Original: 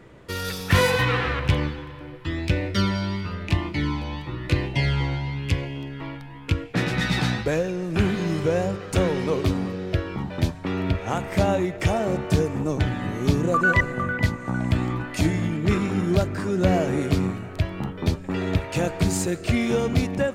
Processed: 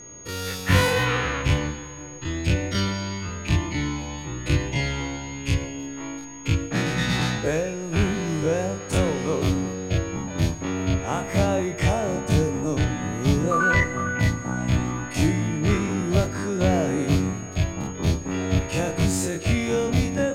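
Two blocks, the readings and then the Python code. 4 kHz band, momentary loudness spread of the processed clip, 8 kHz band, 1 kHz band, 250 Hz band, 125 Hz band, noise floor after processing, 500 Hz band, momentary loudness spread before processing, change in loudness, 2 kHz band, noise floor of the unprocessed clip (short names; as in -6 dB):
+0.5 dB, 9 LU, +6.0 dB, -0.5 dB, 0.0 dB, +0.5 dB, -36 dBFS, -0.5 dB, 8 LU, 0.0 dB, 0.0 dB, -38 dBFS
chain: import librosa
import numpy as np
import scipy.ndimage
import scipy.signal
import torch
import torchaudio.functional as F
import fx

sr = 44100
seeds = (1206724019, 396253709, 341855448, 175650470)

y = fx.spec_dilate(x, sr, span_ms=60)
y = fx.rev_fdn(y, sr, rt60_s=0.75, lf_ratio=1.0, hf_ratio=0.85, size_ms=20.0, drr_db=12.5)
y = y + 10.0 ** (-37.0 / 20.0) * np.sin(2.0 * np.pi * 6600.0 * np.arange(len(y)) / sr)
y = F.gain(torch.from_numpy(y), -4.0).numpy()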